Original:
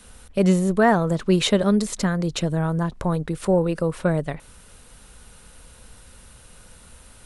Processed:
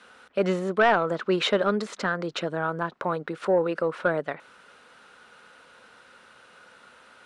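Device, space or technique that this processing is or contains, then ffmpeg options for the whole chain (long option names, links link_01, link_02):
intercom: -af "highpass=350,lowpass=3600,equalizer=frequency=1400:width_type=o:width=0.48:gain=7.5,asoftclip=type=tanh:threshold=-10dB"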